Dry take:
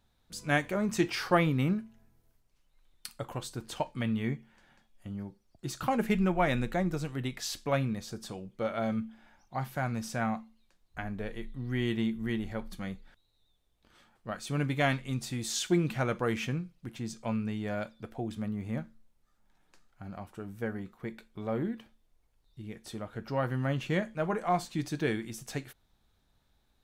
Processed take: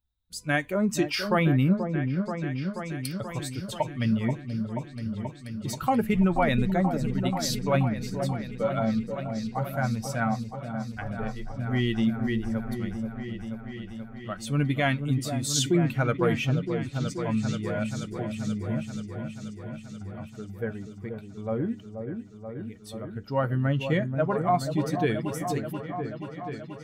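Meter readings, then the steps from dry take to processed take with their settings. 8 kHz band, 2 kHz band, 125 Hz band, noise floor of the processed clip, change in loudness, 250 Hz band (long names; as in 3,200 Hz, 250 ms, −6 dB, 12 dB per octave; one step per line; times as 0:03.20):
+5.5 dB, +3.5 dB, +7.0 dB, −44 dBFS, +4.5 dB, +6.0 dB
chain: spectral dynamics exaggerated over time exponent 1.5
brickwall limiter −22.5 dBFS, peak gain reduction 8.5 dB
echo whose low-pass opens from repeat to repeat 482 ms, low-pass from 750 Hz, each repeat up 1 octave, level −6 dB
level +8.5 dB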